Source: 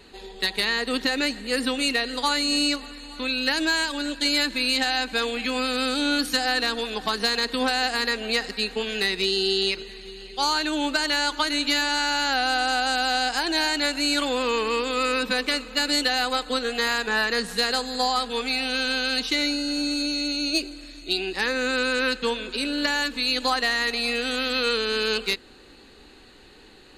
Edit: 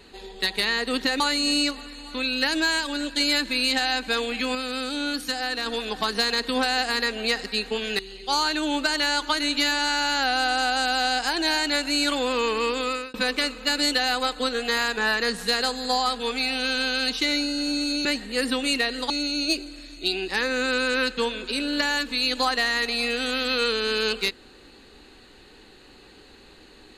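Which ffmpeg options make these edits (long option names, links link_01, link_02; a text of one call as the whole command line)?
ffmpeg -i in.wav -filter_complex "[0:a]asplit=8[link_01][link_02][link_03][link_04][link_05][link_06][link_07][link_08];[link_01]atrim=end=1.202[link_09];[link_02]atrim=start=2.248:end=5.602[link_10];[link_03]atrim=start=5.598:end=6.712,asetpts=PTS-STARTPTS,volume=-4.5dB[link_11];[link_04]atrim=start=6.708:end=9.042[link_12];[link_05]atrim=start=10.088:end=15.24,asetpts=PTS-STARTPTS,afade=type=out:start_time=4.822:duration=0.33[link_13];[link_06]atrim=start=15.24:end=20.152,asetpts=PTS-STARTPTS,afade=type=in:duration=0.004:curve=hsin[link_14];[link_07]atrim=start=1.198:end=2.252[link_15];[link_08]atrim=start=20.148[link_16];[link_09][link_10]acrossfade=duration=0.004:curve1=hsin:curve2=hsin[link_17];[link_17][link_11]acrossfade=duration=0.004:curve1=hsin:curve2=hsin[link_18];[link_18][link_12]acrossfade=duration=0.004:curve1=hsin:curve2=hsin[link_19];[link_13][link_14]concat=n=2:v=0:a=1[link_20];[link_19][link_20]acrossfade=duration=0.004:curve1=hsin:curve2=hsin[link_21];[link_21][link_15]acrossfade=duration=0.004:curve1=hsin:curve2=hsin[link_22];[link_22][link_16]acrossfade=duration=0.004:curve1=hsin:curve2=hsin" out.wav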